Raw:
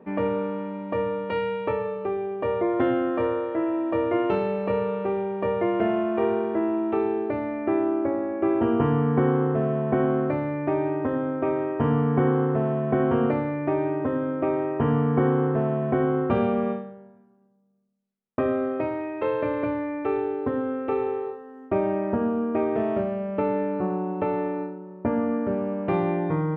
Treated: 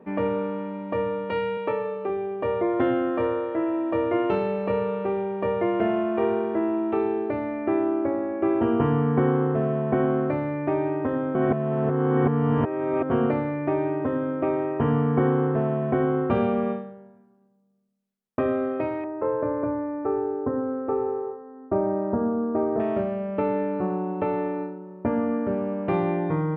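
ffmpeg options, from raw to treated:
ffmpeg -i in.wav -filter_complex "[0:a]asettb=1/sr,asplit=3[link_01][link_02][link_03];[link_01]atrim=end=1.574[link_04];[link_02]atrim=start=1.57:end=2.1,asetpts=PTS-STARTPTS,afade=type=in:duration=0.004:curve=qsin,afade=type=out:start_time=0.526:duration=0.004:curve=qsin,highpass=170[link_05];[link_03]atrim=start=2.096[link_06];[link_04][link_05]acrossfade=duration=0.004:curve1=hsin:curve2=qsin[link_07];[link_07][link_06]acrossfade=duration=0.004:curve1=qsin:curve2=hsin,asettb=1/sr,asplit=3[link_08][link_09][link_10];[link_08]atrim=end=19.044[link_11];[link_09]atrim=start=19.04:end=22.8,asetpts=PTS-STARTPTS,afade=type=in:duration=0.004:curve=qsin,afade=type=out:start_time=3.756:duration=0.004:curve=qsin,lowpass=frequency=1400:width=0.5412,lowpass=frequency=1400:width=1.3066[link_12];[link_10]atrim=start=22.796[link_13];[link_11][link_12]acrossfade=duration=0.004:curve1=hsin:curve2=qsin[link_14];[link_14][link_13]acrossfade=duration=0.004:curve1=qsin:curve2=hsin,asplit=3[link_15][link_16][link_17];[link_15]atrim=end=11.352[link_18];[link_16]atrim=start=11.348:end=13.102,asetpts=PTS-STARTPTS,areverse[link_19];[link_17]atrim=start=13.098[link_20];[link_18][link_19]acrossfade=duration=0.004:curve1=hsin:curve2=hsin[link_21];[link_21][link_20]acrossfade=duration=0.004:curve1=hsin:curve2=hsin" out.wav

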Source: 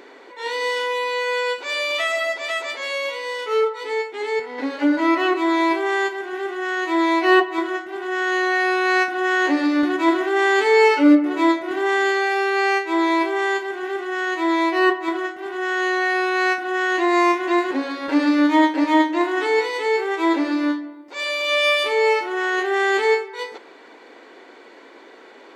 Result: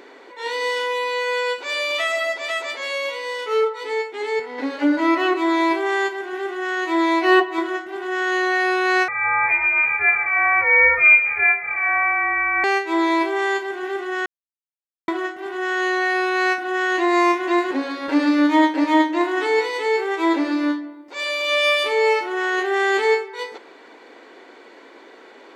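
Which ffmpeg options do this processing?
ffmpeg -i in.wav -filter_complex "[0:a]asettb=1/sr,asplit=3[link_01][link_02][link_03];[link_01]atrim=end=9.084[link_04];[link_02]atrim=start=9.08:end=12.64,asetpts=PTS-STARTPTS,afade=type=in:duration=0.004:curve=qsin,afade=type=out:start_time=3.556:duration=0.004:curve=qsin,lowpass=frequency=2300:width_type=q:width=0.5098,lowpass=frequency=2300:width_type=q:width=0.6013,lowpass=frequency=2300:width_type=q:width=0.9,lowpass=frequency=2300:width_type=q:width=2.563,afreqshift=-2700[link_05];[link_03]atrim=start=12.636[link_06];[link_04][link_05]acrossfade=duration=0.004:curve1=hsin:curve2=qsin[link_07];[link_07][link_06]acrossfade=duration=0.004:curve1=qsin:curve2=hsin,asplit=3[link_08][link_09][link_10];[link_08]atrim=end=14.26,asetpts=PTS-STARTPTS,afade=type=out:start_time=14.256:duration=0.004:curve=hsin[link_11];[link_09]atrim=start=14.26:end=15.08,asetpts=PTS-STARTPTS,volume=0[link_12];[link_10]atrim=start=15.08,asetpts=PTS-STARTPTS,afade=type=in:duration=0.004:curve=hsin[link_13];[link_11][link_12][link_13]concat=n=3:v=0:a=1" out.wav

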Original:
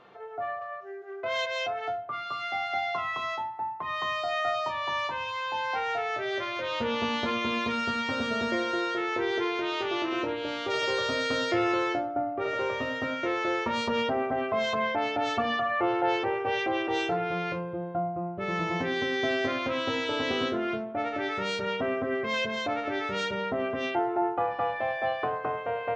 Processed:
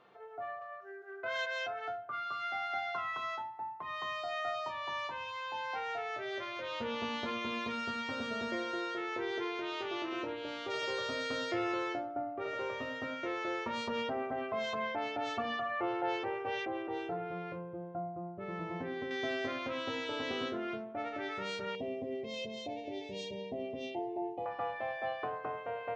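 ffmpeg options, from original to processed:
ffmpeg -i in.wav -filter_complex "[0:a]asettb=1/sr,asplit=3[link_01][link_02][link_03];[link_01]atrim=end=0.804[link_04];[link_02]atrim=start=0.8:end=3.42,asetpts=PTS-STARTPTS,afade=type=in:duration=0.004:curve=qsin,afade=type=out:start_time=2.616:duration=0.004:curve=qsin,equalizer=frequency=1500:width=6.2:gain=13[link_05];[link_03]atrim=start=3.416[link_06];[link_04][link_05]acrossfade=duration=0.004:curve1=hsin:curve2=qsin[link_07];[link_07][link_06]acrossfade=duration=0.004:curve1=qsin:curve2=hsin,asettb=1/sr,asplit=3[link_08][link_09][link_10];[link_08]atrim=end=16.654[link_11];[link_09]atrim=start=16.65:end=19.11,asetpts=PTS-STARTPTS,afade=type=in:duration=0.004:curve=qsin,afade=type=out:start_time=2.456:duration=0.004:curve=qsin,lowpass=frequency=1100:poles=1[link_12];[link_10]atrim=start=19.106[link_13];[link_11][link_12]acrossfade=duration=0.004:curve1=hsin:curve2=qsin[link_14];[link_14][link_13]acrossfade=duration=0.004:curve1=qsin:curve2=hsin,asettb=1/sr,asplit=3[link_15][link_16][link_17];[link_15]atrim=end=21.754[link_18];[link_16]atrim=start=21.75:end=24.46,asetpts=PTS-STARTPTS,afade=type=in:duration=0.004:curve=qsin,afade=type=out:start_time=2.706:duration=0.004:curve=qsin,asuperstop=centerf=1400:order=4:qfactor=0.68[link_19];[link_17]atrim=start=24.456[link_20];[link_18][link_19]acrossfade=duration=0.004:curve1=hsin:curve2=qsin[link_21];[link_21][link_20]acrossfade=duration=0.004:curve1=qsin:curve2=hsin,lowshelf=frequency=73:gain=-6,volume=-8dB" out.wav

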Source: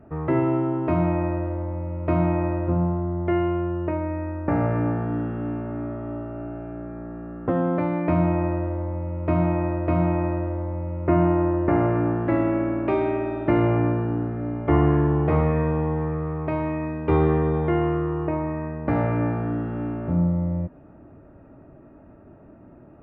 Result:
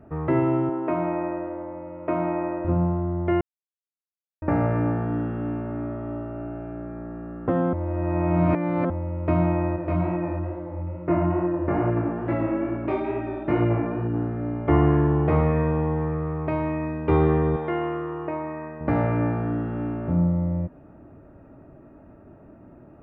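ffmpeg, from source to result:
ffmpeg -i in.wav -filter_complex "[0:a]asettb=1/sr,asplit=3[link_01][link_02][link_03];[link_01]atrim=end=0.694[link_04];[link_02]atrim=start=0.69:end=2.65,asetpts=PTS-STARTPTS,afade=type=in:duration=0.004:curve=qsin,afade=type=out:start_time=1.956:duration=0.004:curve=qsin,highpass=280,lowpass=2600[link_05];[link_03]atrim=start=2.646[link_06];[link_04][link_05]acrossfade=duration=0.004:curve1=hsin:curve2=qsin[link_07];[link_07][link_06]acrossfade=duration=0.004:curve1=qsin:curve2=hsin,asettb=1/sr,asplit=3[link_08][link_09][link_10];[link_08]atrim=end=9.764[link_11];[link_09]atrim=start=9.76:end=14.16,asetpts=PTS-STARTPTS,afade=type=in:duration=0.004:curve=qsin,afade=type=out:start_time=4.396:duration=0.004:curve=qsin,flanger=delay=16.5:depth=5.6:speed=2.3[link_12];[link_10]atrim=start=14.156[link_13];[link_11][link_12]acrossfade=duration=0.004:curve1=hsin:curve2=qsin[link_14];[link_14][link_13]acrossfade=duration=0.004:curve1=qsin:curve2=hsin,asettb=1/sr,asplit=3[link_15][link_16][link_17];[link_15]atrim=end=17.564[link_18];[link_16]atrim=start=17.56:end=18.81,asetpts=PTS-STARTPTS,afade=type=in:duration=0.004:curve=qsin,afade=type=out:start_time=1.246:duration=0.004:curve=qsin,highpass=frequency=470:poles=1[link_19];[link_17]atrim=start=18.806[link_20];[link_18][link_19]acrossfade=duration=0.004:curve1=hsin:curve2=qsin[link_21];[link_21][link_20]acrossfade=duration=0.004:curve1=qsin:curve2=hsin,asplit=5[link_22][link_23][link_24][link_25][link_26];[link_22]atrim=end=3.41,asetpts=PTS-STARTPTS,afade=type=out:start_time=3.406:duration=0.004:curve=hsin[link_27];[link_23]atrim=start=3.41:end=4.42,asetpts=PTS-STARTPTS,volume=0[link_28];[link_24]atrim=start=4.42:end=7.732,asetpts=PTS-STARTPTS,afade=type=in:duration=0.004:curve=hsin[link_29];[link_25]atrim=start=7.728:end=8.902,asetpts=PTS-STARTPTS,areverse[link_30];[link_26]atrim=start=8.898[link_31];[link_27][link_28][link_29]concat=n=3:v=0:a=1[link_32];[link_32][link_30]acrossfade=duration=0.004:curve1=hsin:curve2=hsin[link_33];[link_33][link_31]acrossfade=duration=0.004:curve1=hsin:curve2=hsin" out.wav

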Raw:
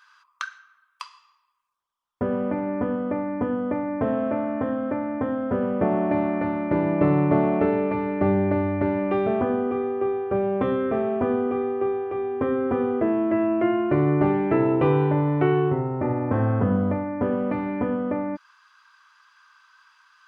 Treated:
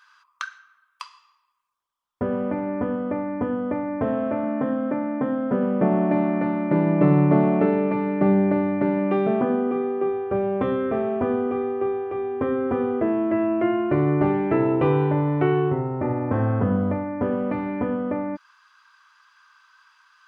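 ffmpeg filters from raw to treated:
ffmpeg -i in.wav -filter_complex "[0:a]asettb=1/sr,asplit=3[link_01][link_02][link_03];[link_01]atrim=end=4.434[link_04];[link_02]atrim=start=4.43:end=10.1,asetpts=PTS-STARTPTS,afade=type=in:duration=0.004:curve=qsin,afade=type=out:start_time=5.666:duration=0.004:curve=qsin,lowshelf=frequency=120:width_type=q:width=3:gain=-9[link_05];[link_03]atrim=start=10.096[link_06];[link_04][link_05]acrossfade=duration=0.004:curve1=hsin:curve2=qsin[link_07];[link_07][link_06]acrossfade=duration=0.004:curve1=qsin:curve2=hsin" out.wav

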